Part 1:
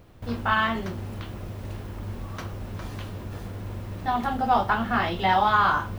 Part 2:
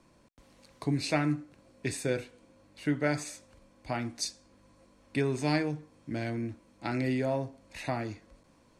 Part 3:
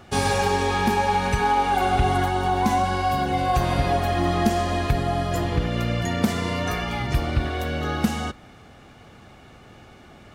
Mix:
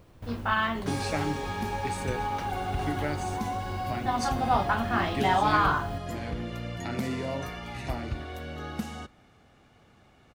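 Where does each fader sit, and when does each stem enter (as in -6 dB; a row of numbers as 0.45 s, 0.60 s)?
-3.5 dB, -4.0 dB, -11.5 dB; 0.00 s, 0.00 s, 0.75 s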